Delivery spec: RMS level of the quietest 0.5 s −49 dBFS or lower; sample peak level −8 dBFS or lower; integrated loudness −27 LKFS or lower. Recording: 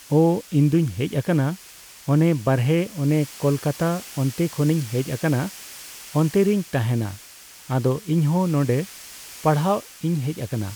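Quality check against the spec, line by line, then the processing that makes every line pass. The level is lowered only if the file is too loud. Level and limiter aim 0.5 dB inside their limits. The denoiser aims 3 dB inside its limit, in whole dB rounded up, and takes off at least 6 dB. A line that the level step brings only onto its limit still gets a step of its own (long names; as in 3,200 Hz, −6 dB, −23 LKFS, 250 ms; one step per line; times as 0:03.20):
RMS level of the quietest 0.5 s −45 dBFS: out of spec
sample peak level −6.5 dBFS: out of spec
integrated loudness −22.5 LKFS: out of spec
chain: level −5 dB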